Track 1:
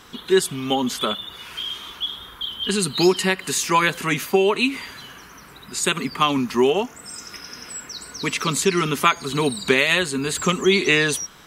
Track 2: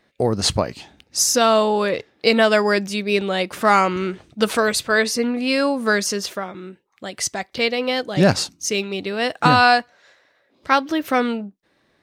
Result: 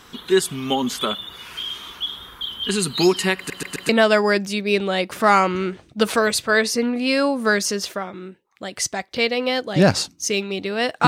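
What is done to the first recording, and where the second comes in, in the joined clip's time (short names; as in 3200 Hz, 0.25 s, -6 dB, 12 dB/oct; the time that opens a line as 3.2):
track 1
3.37 stutter in place 0.13 s, 4 plays
3.89 switch to track 2 from 2.3 s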